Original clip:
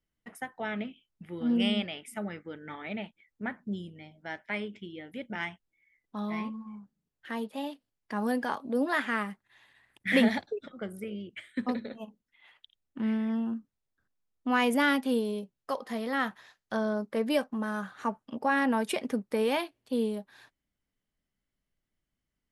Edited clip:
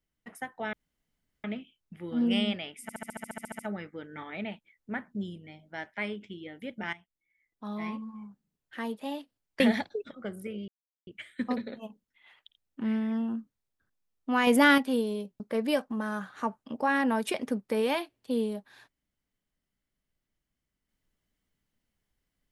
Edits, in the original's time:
0.73 insert room tone 0.71 s
2.11 stutter 0.07 s, 12 plays
5.45–6.59 fade in, from -14.5 dB
8.12–10.17 cut
11.25 insert silence 0.39 s
14.65–14.96 gain +5 dB
15.58–17.02 cut

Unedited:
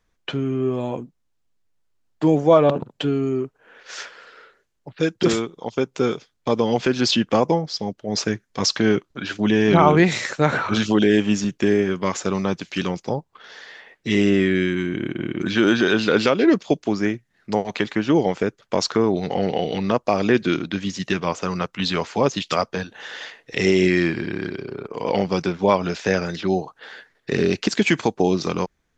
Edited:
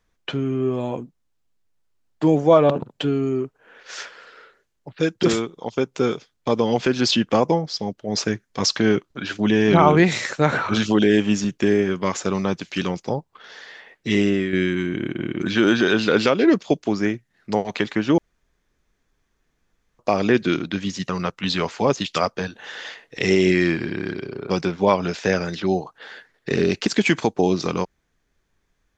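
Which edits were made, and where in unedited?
14.15–14.53 fade out, to -7.5 dB
18.18–19.99 room tone
21.09–21.45 cut
24.86–25.31 cut

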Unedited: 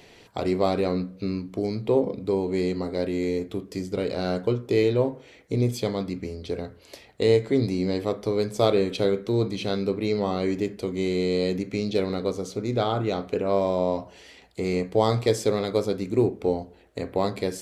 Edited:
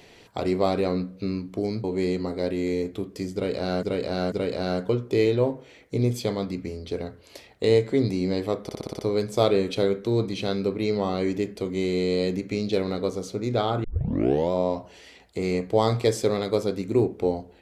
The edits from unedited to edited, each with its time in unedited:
1.84–2.4 cut
3.9–4.39 loop, 3 plays
8.21 stutter 0.06 s, 7 plays
13.06 tape start 0.68 s

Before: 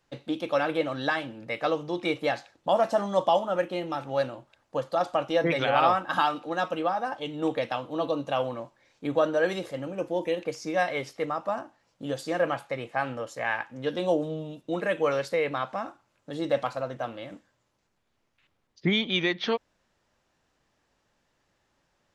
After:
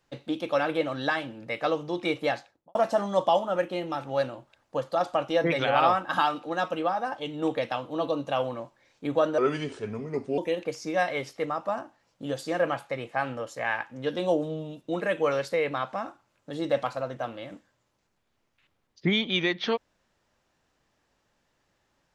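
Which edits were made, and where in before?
2.31–2.75 studio fade out
9.38–10.18 speed 80%

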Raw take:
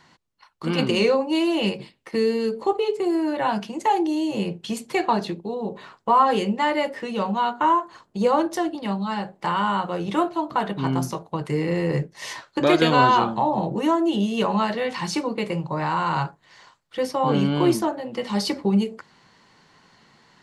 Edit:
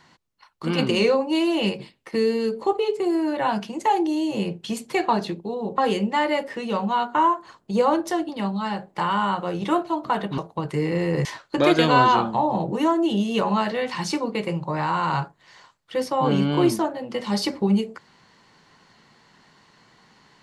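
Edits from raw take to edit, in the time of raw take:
5.78–6.24 cut
10.84–11.14 cut
12.01–12.28 cut

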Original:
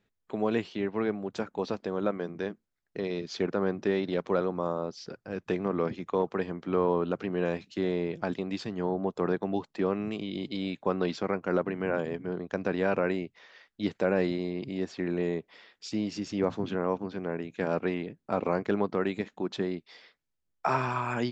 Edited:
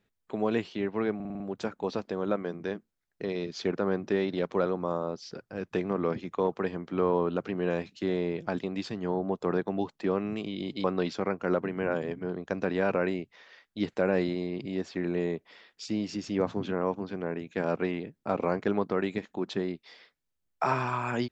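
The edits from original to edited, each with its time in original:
1.15 stutter 0.05 s, 6 plays
10.59–10.87 cut

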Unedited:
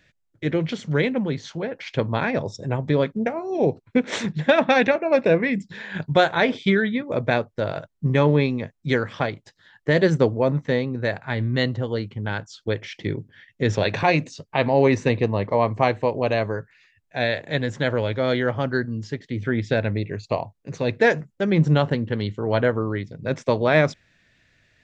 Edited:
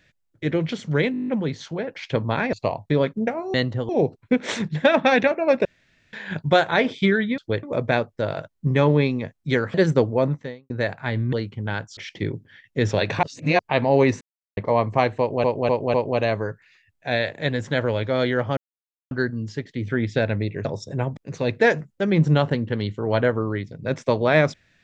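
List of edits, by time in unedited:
1.12 stutter 0.02 s, 9 plays
2.37–2.89 swap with 20.2–20.57
5.29–5.77 room tone
9.13–9.98 cut
10.53–10.94 fade out quadratic
11.57–11.92 move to 3.53
12.56–12.81 move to 7.02
14.07–14.43 reverse
15.05–15.41 mute
16.03–16.28 loop, 4 plays
18.66 insert silence 0.54 s

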